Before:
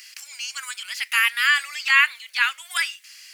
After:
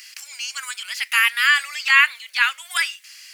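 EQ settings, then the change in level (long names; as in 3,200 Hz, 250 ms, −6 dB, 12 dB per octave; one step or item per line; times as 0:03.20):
low-shelf EQ 500 Hz +4 dB
+2.0 dB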